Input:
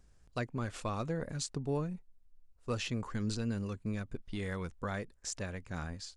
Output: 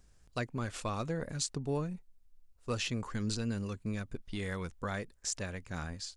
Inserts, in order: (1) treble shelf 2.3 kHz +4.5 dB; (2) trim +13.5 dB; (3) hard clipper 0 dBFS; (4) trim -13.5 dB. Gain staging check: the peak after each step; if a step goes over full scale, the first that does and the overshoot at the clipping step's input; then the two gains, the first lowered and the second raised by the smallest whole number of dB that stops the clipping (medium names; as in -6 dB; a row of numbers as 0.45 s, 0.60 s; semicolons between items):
-16.0 dBFS, -2.5 dBFS, -2.5 dBFS, -16.0 dBFS; nothing clips